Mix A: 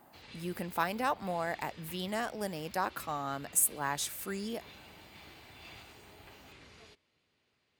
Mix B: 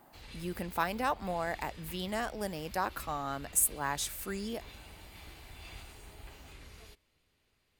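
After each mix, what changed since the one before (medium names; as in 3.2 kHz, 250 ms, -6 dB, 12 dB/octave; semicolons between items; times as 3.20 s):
background: remove band-pass 120–6200 Hz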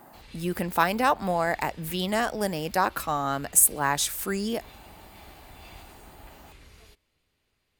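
speech +9.0 dB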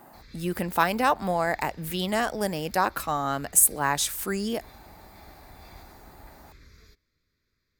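background: add static phaser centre 2.9 kHz, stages 6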